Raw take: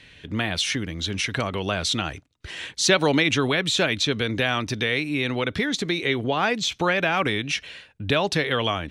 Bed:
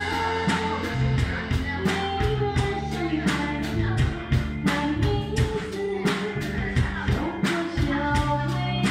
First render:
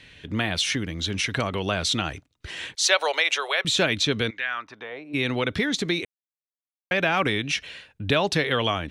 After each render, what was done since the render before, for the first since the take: 2.75–3.65 inverse Chebyshev high-pass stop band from 260 Hz; 4.29–5.13 band-pass 2400 Hz -> 540 Hz, Q 2.5; 6.05–6.91 mute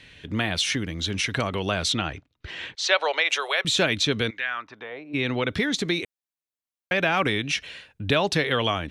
1.92–3.29 LPF 4100 Hz; 4.5–5.48 air absorption 73 m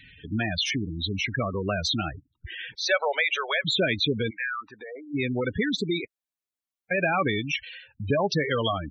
spectral gate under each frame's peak -10 dB strong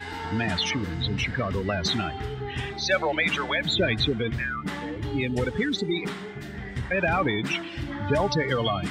add bed -9 dB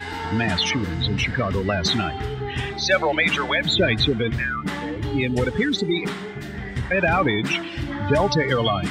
gain +4.5 dB

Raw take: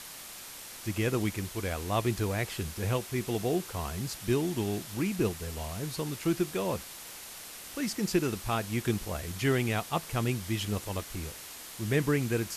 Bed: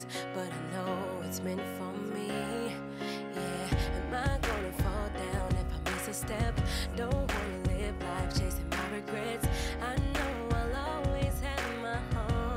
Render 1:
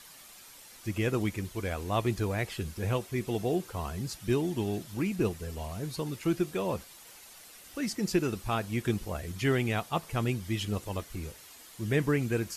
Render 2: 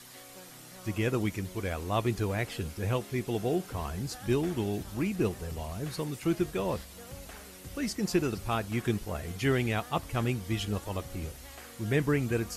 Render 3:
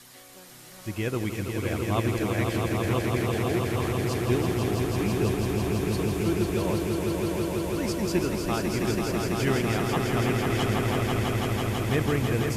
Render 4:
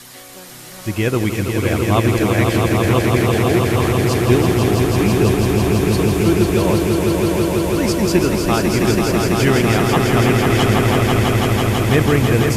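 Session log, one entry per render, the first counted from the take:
denoiser 9 dB, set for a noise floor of -45 dBFS
add bed -15 dB
swelling echo 0.165 s, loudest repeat 5, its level -5 dB
gain +11 dB; limiter -3 dBFS, peak gain reduction 2 dB

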